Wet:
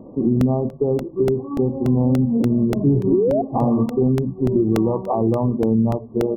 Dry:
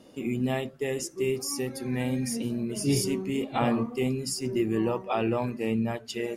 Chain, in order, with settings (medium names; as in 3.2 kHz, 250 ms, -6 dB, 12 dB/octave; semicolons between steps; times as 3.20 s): painted sound rise, 3.12–3.42 s, 330–730 Hz -21 dBFS; brick-wall FIR low-pass 1.2 kHz; compression, threshold -28 dBFS, peak gain reduction 9.5 dB; bass shelf 420 Hz +8.5 dB; crackling interface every 0.29 s, samples 64, repeat, from 0.41 s; trim +8.5 dB